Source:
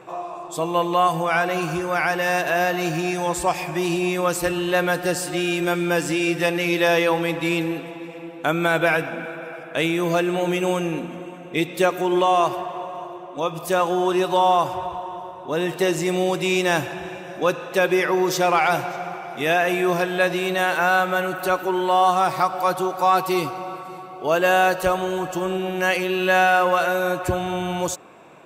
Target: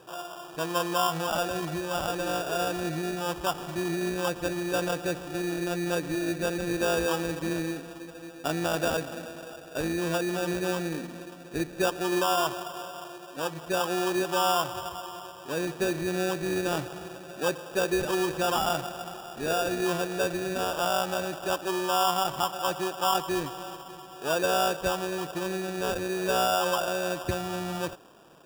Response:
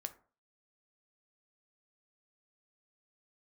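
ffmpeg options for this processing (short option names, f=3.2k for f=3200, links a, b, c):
-af "lowpass=f=1.4k:p=1,acrusher=samples=21:mix=1:aa=0.000001,volume=-6.5dB"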